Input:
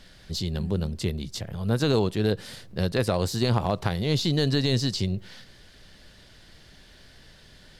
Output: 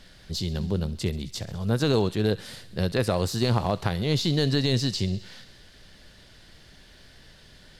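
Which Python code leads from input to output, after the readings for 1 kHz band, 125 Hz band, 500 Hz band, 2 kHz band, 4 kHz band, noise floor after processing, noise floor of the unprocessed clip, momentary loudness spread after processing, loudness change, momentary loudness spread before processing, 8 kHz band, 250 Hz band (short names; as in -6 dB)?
0.0 dB, 0.0 dB, 0.0 dB, 0.0 dB, 0.0 dB, -52 dBFS, -52 dBFS, 10 LU, 0.0 dB, 9 LU, 0.0 dB, 0.0 dB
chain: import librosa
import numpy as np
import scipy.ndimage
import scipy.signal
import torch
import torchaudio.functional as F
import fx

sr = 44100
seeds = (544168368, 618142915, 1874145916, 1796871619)

y = fx.echo_wet_highpass(x, sr, ms=66, feedback_pct=76, hz=1700.0, wet_db=-17.0)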